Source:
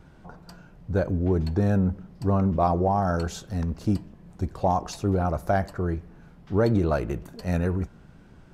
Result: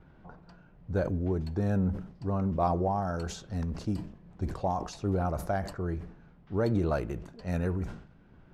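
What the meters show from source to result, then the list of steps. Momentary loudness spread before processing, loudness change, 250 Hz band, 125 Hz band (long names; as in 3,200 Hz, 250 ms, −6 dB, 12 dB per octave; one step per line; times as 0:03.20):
9 LU, −6.0 dB, −6.0 dB, −5.5 dB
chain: shaped tremolo triangle 1.2 Hz, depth 35%
low-pass that shuts in the quiet parts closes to 2,800 Hz, open at −24.5 dBFS
level that may fall only so fast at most 98 dB per second
level −4.5 dB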